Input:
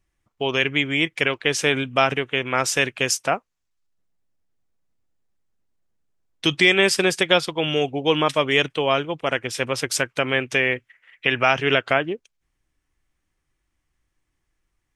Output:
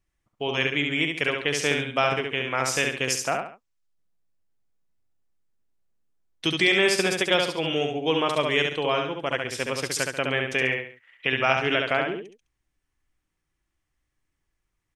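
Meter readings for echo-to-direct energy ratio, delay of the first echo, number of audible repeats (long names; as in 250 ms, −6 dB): −3.5 dB, 69 ms, 3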